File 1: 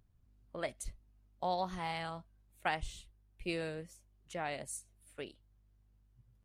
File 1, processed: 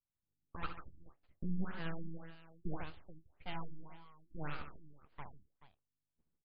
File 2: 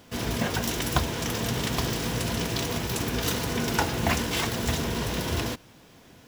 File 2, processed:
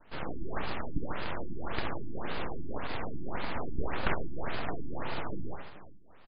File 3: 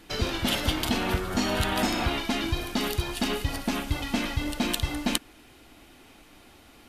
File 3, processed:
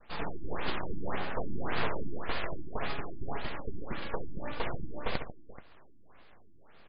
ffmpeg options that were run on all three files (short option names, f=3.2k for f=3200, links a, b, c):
-filter_complex "[0:a]agate=range=-33dB:threshold=-56dB:ratio=3:detection=peak,bass=f=250:g=-10,treble=f=4k:g=-12,aeval=exprs='abs(val(0))':c=same,asplit=2[a][b];[b]acrusher=samples=10:mix=1:aa=0.000001,volume=-6.5dB[c];[a][c]amix=inputs=2:normalize=0,aecho=1:1:67|144|431:0.355|0.299|0.168,afftfilt=real='re*lt(b*sr/1024,350*pow(5100/350,0.5+0.5*sin(2*PI*1.8*pts/sr)))':imag='im*lt(b*sr/1024,350*pow(5100/350,0.5+0.5*sin(2*PI*1.8*pts/sr)))':win_size=1024:overlap=0.75,volume=-3dB"